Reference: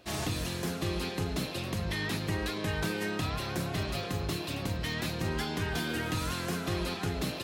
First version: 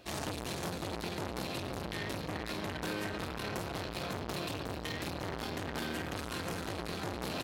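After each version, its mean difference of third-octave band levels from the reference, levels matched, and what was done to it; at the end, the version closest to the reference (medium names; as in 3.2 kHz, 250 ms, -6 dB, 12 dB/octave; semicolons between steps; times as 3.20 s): 3.0 dB: feedback delay 391 ms, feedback 53%, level -7 dB; gain riding 0.5 s; transformer saturation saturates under 1.4 kHz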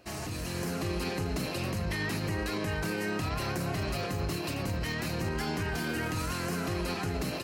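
1.5 dB: peaking EQ 3.5 kHz -12 dB 0.22 oct; peak limiter -29 dBFS, peak gain reduction 7.5 dB; level rider gain up to 5 dB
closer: second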